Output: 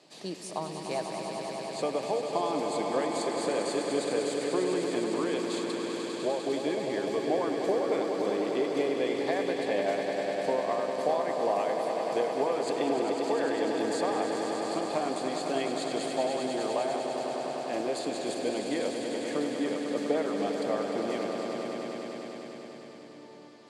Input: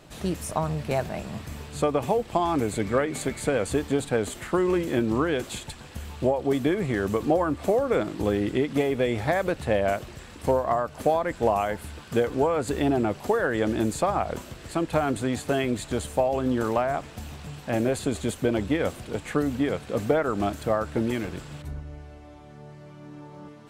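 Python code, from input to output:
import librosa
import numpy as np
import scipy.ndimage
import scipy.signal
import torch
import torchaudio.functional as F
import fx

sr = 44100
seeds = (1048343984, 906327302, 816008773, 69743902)

y = fx.cabinet(x, sr, low_hz=200.0, low_slope=24, high_hz=9800.0, hz=(230.0, 1400.0, 4600.0), db=(-6, -9, 10))
y = fx.echo_swell(y, sr, ms=100, loudest=5, wet_db=-8)
y = y * librosa.db_to_amplitude(-6.5)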